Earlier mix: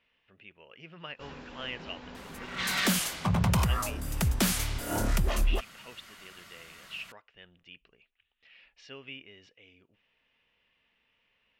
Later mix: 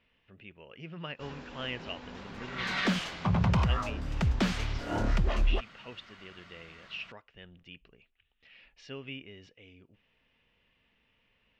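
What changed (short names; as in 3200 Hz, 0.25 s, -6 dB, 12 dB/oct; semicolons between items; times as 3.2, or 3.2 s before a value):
speech: add low shelf 370 Hz +10 dB; second sound: add air absorption 180 m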